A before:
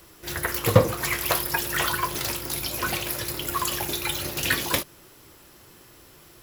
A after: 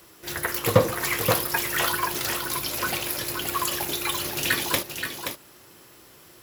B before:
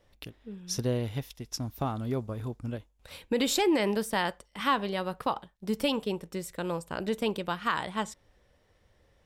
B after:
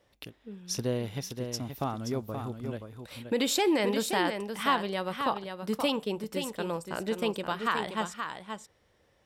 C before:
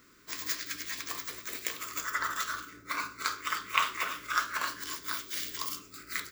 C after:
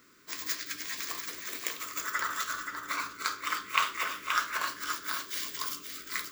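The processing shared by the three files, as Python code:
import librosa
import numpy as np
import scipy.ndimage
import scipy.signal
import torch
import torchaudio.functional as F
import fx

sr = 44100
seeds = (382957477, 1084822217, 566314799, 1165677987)

p1 = fx.highpass(x, sr, hz=140.0, slope=6)
y = p1 + fx.echo_single(p1, sr, ms=526, db=-7.0, dry=0)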